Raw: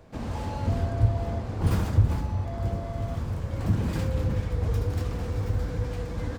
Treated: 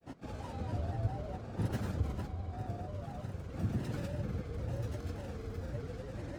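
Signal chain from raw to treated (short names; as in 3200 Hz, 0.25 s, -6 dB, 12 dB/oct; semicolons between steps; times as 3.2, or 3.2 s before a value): notch comb 1000 Hz; grains, pitch spread up and down by 3 st; gain -7 dB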